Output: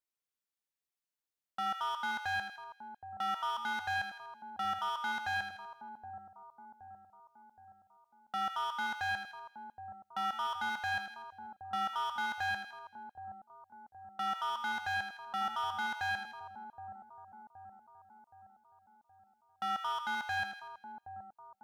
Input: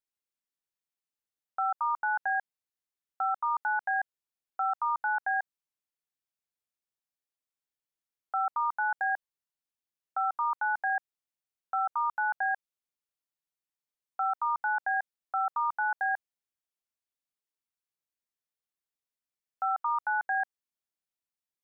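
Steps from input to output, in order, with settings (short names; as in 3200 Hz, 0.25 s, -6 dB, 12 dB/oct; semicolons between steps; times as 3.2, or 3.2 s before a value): overloaded stage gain 29.5 dB; split-band echo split 930 Hz, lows 0.771 s, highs 81 ms, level -8 dB; gain -2.5 dB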